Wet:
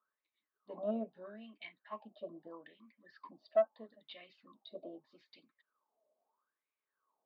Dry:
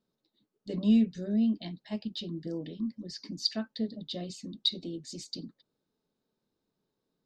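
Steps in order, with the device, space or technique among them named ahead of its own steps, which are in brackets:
wah-wah guitar rig (LFO wah 0.78 Hz 620–2,300 Hz, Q 12; tube saturation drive 39 dB, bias 0.25; loudspeaker in its box 110–3,500 Hz, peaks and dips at 170 Hz −5 dB, 600 Hz +6 dB, 1,100 Hz +9 dB, 2,100 Hz −6 dB)
level +14 dB

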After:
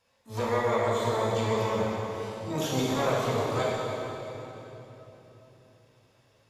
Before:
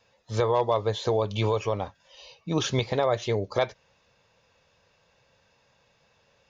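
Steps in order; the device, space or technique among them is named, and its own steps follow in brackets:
shimmer-style reverb (pitch-shifted copies added +12 semitones −5 dB; convolution reverb RT60 3.6 s, pre-delay 17 ms, DRR −5 dB)
level −9 dB

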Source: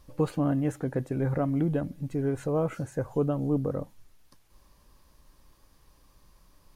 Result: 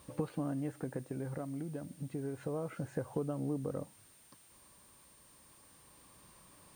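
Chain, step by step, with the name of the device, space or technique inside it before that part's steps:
medium wave at night (band-pass filter 110–4,000 Hz; downward compressor 6 to 1, threshold −37 dBFS, peak gain reduction 15.5 dB; amplitude tremolo 0.3 Hz, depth 44%; steady tone 9,000 Hz −66 dBFS; white noise bed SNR 25 dB)
level +3.5 dB

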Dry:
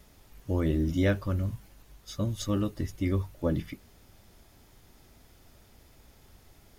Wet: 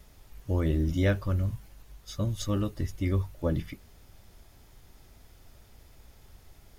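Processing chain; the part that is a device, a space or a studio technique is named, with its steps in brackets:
low shelf boost with a cut just above (low-shelf EQ 70 Hz +6.5 dB; parametric band 260 Hz −3 dB 0.93 octaves)

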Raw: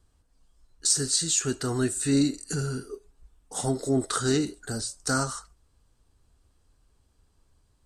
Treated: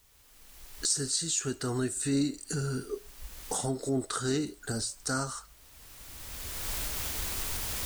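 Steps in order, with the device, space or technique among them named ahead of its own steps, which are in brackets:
cheap recorder with automatic gain (white noise bed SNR 30 dB; camcorder AGC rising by 20 dB per second)
level −5.5 dB

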